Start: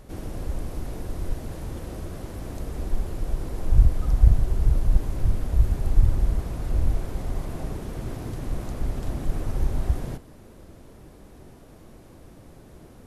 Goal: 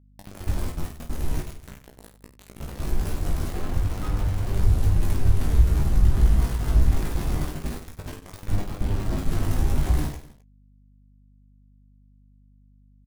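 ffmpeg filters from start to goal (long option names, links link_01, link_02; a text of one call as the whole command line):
ffmpeg -i in.wav -filter_complex "[0:a]aeval=exprs='val(0)+0.5*0.0355*sgn(val(0))':channel_layout=same,agate=range=-11dB:threshold=-25dB:ratio=16:detection=peak,asettb=1/sr,asplit=3[link_01][link_02][link_03];[link_01]atrim=end=3.484[link_04];[link_02]atrim=start=3.48:end=4.56,asetpts=PTS-STARTPTS,afade=type=in:duration=0.004:curve=qsin,afade=type=out:start_time=1.076:duration=0.004:curve=qsin,acrossover=split=100|2100[link_05][link_06][link_07];[link_05]acompressor=threshold=-25dB:ratio=4[link_08];[link_06]acompressor=threshold=-33dB:ratio=4[link_09];[link_07]acompressor=threshold=-55dB:ratio=4[link_10];[link_08][link_09][link_10]amix=inputs=3:normalize=0[link_11];[link_03]atrim=start=4.556[link_12];[link_04][link_11]acrossfade=duration=0.004:curve1=hsin:curve2=qsin[link_13];[link_13][link_12]acrossfade=duration=0.004:curve1=qsin:curve2=hsin,asettb=1/sr,asplit=3[link_14][link_15][link_16];[link_14]atrim=end=8.544[link_17];[link_15]atrim=start=8.54:end=9.18,asetpts=PTS-STARTPTS,afade=type=in:duration=0.004:curve=qsin,afade=type=out:start_time=0.636:duration=0.004:curve=qsin,highshelf=frequency=2300:gain=-10[link_18];[link_16]atrim=start=9.176[link_19];[link_17][link_18]acrossfade=duration=0.004:curve1=hsin:curve2=qsin[link_20];[link_20][link_19]acrossfade=duration=0.004:curve1=qsin:curve2=hsin,asplit=2[link_21][link_22];[link_22]alimiter=limit=-14.5dB:level=0:latency=1:release=105,volume=-2.5dB[link_23];[link_21][link_23]amix=inputs=2:normalize=0,equalizer=frequency=530:width=1.6:gain=-4.5,aeval=exprs='val(0)*gte(abs(val(0)),0.0355)':channel_layout=same,flanger=delay=9.5:depth=6.6:regen=26:speed=0.23:shape=triangular,aecho=1:1:20|50|95|162.5|263.8:0.631|0.398|0.251|0.158|0.1,aeval=exprs='val(0)+0.00178*(sin(2*PI*50*n/s)+sin(2*PI*2*50*n/s)/2+sin(2*PI*3*50*n/s)/3+sin(2*PI*4*50*n/s)/4+sin(2*PI*5*50*n/s)/5)':channel_layout=same,volume=1dB" out.wav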